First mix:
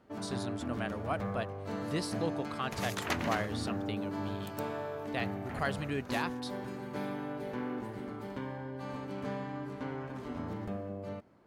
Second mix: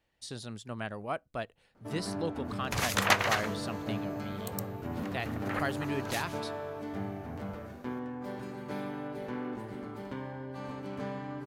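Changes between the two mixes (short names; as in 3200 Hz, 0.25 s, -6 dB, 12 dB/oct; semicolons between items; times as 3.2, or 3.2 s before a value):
first sound: entry +1.75 s; second sound +10.0 dB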